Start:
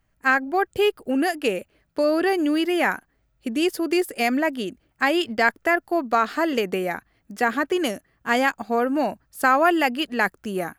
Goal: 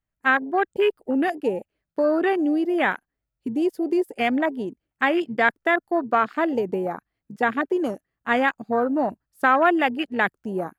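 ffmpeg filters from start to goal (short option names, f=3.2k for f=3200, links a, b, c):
-af "afwtdn=0.0501"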